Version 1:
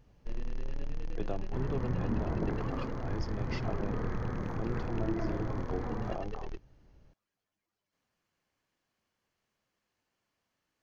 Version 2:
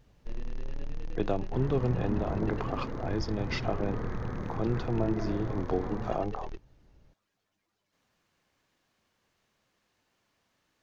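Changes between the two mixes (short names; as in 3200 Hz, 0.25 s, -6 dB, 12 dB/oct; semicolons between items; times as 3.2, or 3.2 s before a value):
speech +8.0 dB; master: remove notch 3700 Hz, Q 15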